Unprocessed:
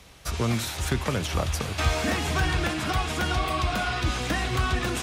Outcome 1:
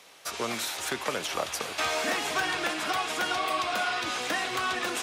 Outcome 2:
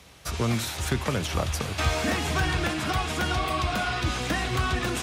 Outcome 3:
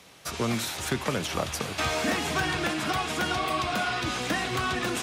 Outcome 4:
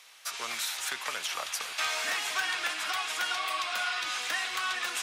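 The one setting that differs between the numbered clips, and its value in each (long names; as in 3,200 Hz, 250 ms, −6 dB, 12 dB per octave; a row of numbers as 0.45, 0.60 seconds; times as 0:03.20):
high-pass filter, corner frequency: 420, 58, 160, 1,200 Hertz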